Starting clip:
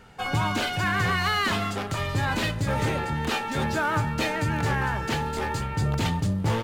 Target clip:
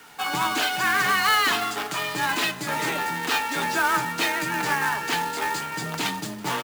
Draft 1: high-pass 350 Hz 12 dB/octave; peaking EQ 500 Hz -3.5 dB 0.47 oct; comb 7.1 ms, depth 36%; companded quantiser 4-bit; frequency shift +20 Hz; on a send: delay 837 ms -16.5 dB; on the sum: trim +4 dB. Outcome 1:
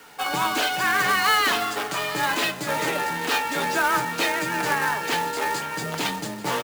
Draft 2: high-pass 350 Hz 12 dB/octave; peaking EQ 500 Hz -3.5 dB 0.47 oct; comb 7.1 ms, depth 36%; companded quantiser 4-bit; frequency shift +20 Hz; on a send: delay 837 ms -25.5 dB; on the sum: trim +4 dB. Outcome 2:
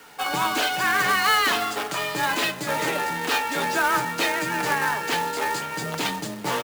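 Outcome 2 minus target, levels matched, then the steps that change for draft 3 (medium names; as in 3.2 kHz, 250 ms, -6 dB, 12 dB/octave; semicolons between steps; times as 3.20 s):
500 Hz band +3.5 dB
change: peaking EQ 500 Hz -12 dB 0.47 oct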